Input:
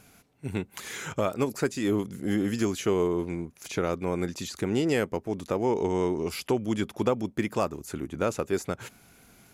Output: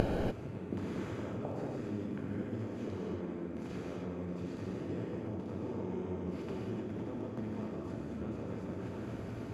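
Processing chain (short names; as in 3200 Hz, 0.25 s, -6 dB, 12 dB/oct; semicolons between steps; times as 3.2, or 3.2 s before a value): per-bin compression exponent 0.4; HPF 48 Hz; RIAA curve playback; compressor, threshold -22 dBFS, peak gain reduction 11 dB; flipped gate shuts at -27 dBFS, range -30 dB; on a send: delay with a stepping band-pass 0.725 s, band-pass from 250 Hz, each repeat 1.4 oct, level -2.5 dB; on the sum: non-linear reverb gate 0.32 s flat, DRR -4.5 dB; gain +9.5 dB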